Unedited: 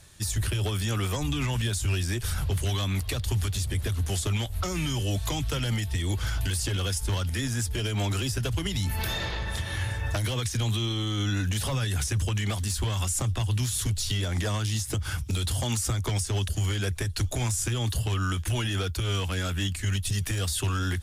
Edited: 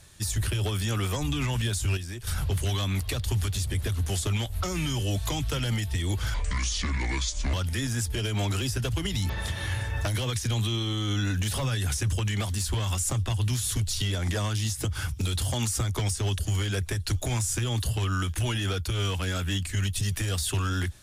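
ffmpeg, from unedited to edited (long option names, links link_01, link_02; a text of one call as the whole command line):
ffmpeg -i in.wav -filter_complex "[0:a]asplit=6[link_01][link_02][link_03][link_04][link_05][link_06];[link_01]atrim=end=1.972[link_07];[link_02]atrim=start=1.968:end=2.272,asetpts=PTS-STARTPTS,volume=-8dB[link_08];[link_03]atrim=start=2.268:end=6.344[link_09];[link_04]atrim=start=6.34:end=7.14,asetpts=PTS-STARTPTS,asetrate=29547,aresample=44100[link_10];[link_05]atrim=start=7.136:end=8.902[link_11];[link_06]atrim=start=9.388[link_12];[link_07][link_08]acrossfade=duration=0.004:curve1=hsin:curve2=hsin[link_13];[link_13][link_09]acrossfade=duration=0.004:curve1=hsin:curve2=hsin[link_14];[link_14][link_10]acrossfade=duration=0.004:curve1=hsin:curve2=hsin[link_15];[link_15][link_11]acrossfade=duration=0.004:curve1=hsin:curve2=hsin[link_16];[link_16][link_12]acrossfade=duration=0.004:curve1=hsin:curve2=hsin" out.wav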